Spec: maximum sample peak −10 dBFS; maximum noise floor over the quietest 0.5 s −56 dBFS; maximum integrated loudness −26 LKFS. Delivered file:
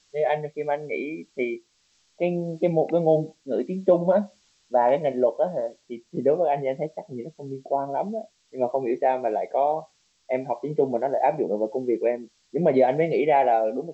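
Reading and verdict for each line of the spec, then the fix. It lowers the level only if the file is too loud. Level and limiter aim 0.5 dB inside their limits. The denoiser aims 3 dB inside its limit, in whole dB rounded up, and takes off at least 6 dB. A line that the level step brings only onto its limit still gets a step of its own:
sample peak −7.5 dBFS: out of spec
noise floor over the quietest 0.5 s −66 dBFS: in spec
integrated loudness −24.5 LKFS: out of spec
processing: level −2 dB
brickwall limiter −10.5 dBFS

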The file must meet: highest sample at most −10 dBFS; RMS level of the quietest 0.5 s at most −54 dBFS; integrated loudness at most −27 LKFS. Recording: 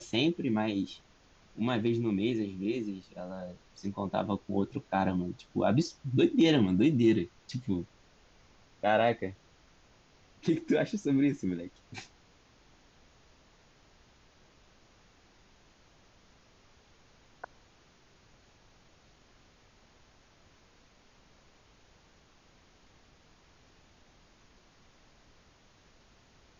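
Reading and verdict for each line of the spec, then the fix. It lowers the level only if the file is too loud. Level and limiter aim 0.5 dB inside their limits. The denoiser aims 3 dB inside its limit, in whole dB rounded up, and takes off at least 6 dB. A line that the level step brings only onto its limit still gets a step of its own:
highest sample −14.0 dBFS: in spec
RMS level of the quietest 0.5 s −62 dBFS: in spec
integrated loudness −30.5 LKFS: in spec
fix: no processing needed

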